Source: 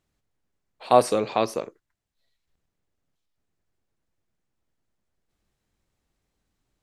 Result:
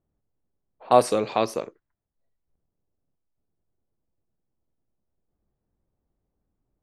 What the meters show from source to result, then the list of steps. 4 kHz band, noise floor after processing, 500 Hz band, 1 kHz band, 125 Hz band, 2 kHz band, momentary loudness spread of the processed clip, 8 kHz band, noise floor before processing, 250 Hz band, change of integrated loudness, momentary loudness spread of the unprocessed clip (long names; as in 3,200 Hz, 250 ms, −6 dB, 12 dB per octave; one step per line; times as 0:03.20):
−0.5 dB, −82 dBFS, 0.0 dB, 0.0 dB, 0.0 dB, 0.0 dB, 15 LU, 0.0 dB, −81 dBFS, 0.0 dB, 0.0 dB, 15 LU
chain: low-pass that shuts in the quiet parts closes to 770 Hz, open at −23 dBFS